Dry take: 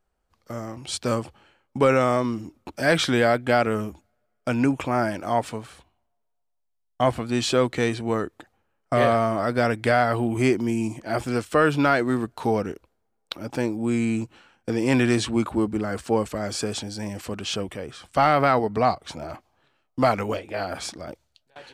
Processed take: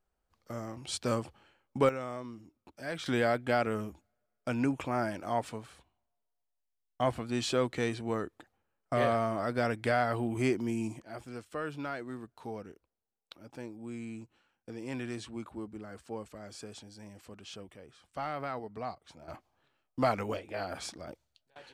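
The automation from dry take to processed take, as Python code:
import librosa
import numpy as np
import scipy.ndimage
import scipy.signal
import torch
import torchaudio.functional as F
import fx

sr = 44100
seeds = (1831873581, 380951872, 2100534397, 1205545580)

y = fx.gain(x, sr, db=fx.steps((0.0, -6.5), (1.89, -18.0), (3.06, -8.5), (11.02, -18.0), (19.28, -8.0)))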